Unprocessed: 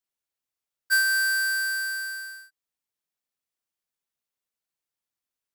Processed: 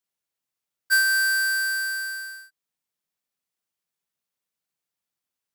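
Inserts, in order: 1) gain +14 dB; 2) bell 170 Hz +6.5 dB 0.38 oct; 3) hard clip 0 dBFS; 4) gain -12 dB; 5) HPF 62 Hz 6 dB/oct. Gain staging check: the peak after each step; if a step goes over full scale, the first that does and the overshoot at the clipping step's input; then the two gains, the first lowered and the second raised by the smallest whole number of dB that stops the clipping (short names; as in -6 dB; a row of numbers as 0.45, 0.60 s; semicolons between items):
-4.5, -4.0, -4.0, -16.0, -16.0 dBFS; no overload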